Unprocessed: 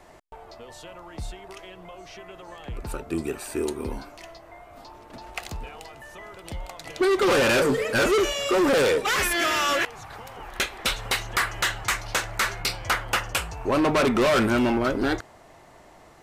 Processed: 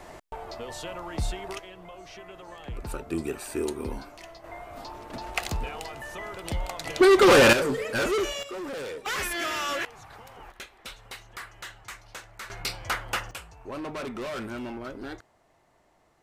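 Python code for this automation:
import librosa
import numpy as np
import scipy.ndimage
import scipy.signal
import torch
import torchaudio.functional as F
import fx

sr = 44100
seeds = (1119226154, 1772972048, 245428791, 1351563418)

y = fx.gain(x, sr, db=fx.steps((0.0, 5.5), (1.59, -2.0), (4.44, 4.5), (7.53, -5.0), (8.43, -15.0), (9.06, -6.5), (10.52, -16.5), (12.5, -5.0), (13.31, -14.0)))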